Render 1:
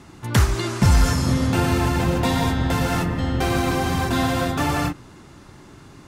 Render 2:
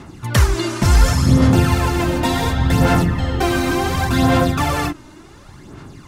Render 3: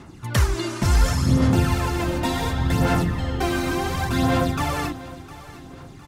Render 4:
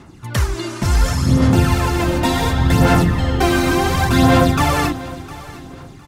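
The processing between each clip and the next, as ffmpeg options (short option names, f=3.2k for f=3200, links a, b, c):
-af "aphaser=in_gain=1:out_gain=1:delay=3.3:decay=0.52:speed=0.69:type=sinusoidal,volume=2dB"
-af "aecho=1:1:708|1416|2124|2832:0.141|0.0593|0.0249|0.0105,volume=-5.5dB"
-af "dynaudnorm=f=540:g=5:m=11.5dB,volume=1dB"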